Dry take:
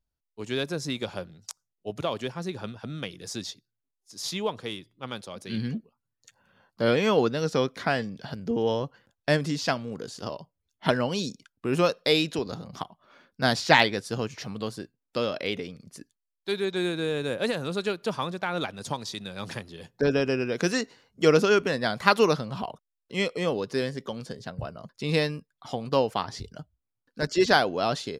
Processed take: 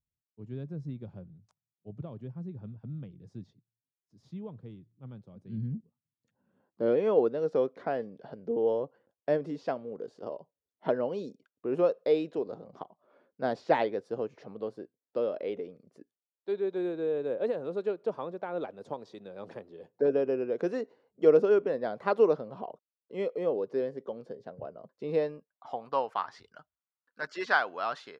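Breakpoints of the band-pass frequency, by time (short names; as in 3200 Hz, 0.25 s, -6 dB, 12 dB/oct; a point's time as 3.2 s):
band-pass, Q 1.7
5.77 s 130 Hz
7.06 s 480 Hz
25.12 s 480 Hz
26.3 s 1300 Hz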